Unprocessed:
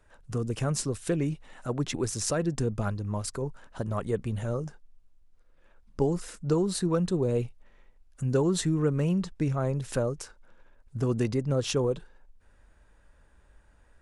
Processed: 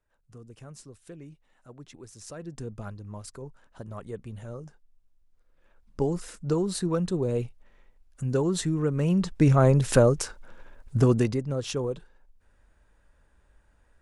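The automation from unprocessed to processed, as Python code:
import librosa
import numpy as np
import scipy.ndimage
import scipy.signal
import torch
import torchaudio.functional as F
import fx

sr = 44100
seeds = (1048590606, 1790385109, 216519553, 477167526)

y = fx.gain(x, sr, db=fx.line((2.08, -17.0), (2.65, -8.5), (4.54, -8.5), (6.07, -0.5), (8.92, -0.5), (9.52, 9.5), (10.97, 9.5), (11.49, -3.0)))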